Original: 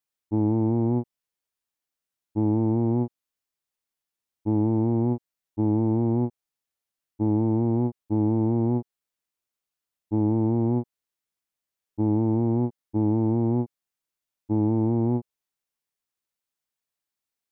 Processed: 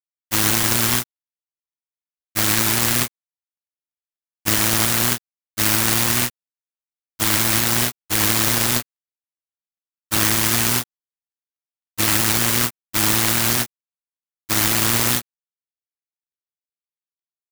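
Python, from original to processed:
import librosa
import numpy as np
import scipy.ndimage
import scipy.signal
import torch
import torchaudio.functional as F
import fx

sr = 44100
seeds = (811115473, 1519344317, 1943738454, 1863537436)

y = fx.dead_time(x, sr, dead_ms=0.25)
y = (np.kron(scipy.signal.resample_poly(y, 1, 6), np.eye(6)[0]) * 6)[:len(y)]
y = fx.noise_mod_delay(y, sr, seeds[0], noise_hz=1400.0, depth_ms=0.46)
y = y * librosa.db_to_amplitude(-2.0)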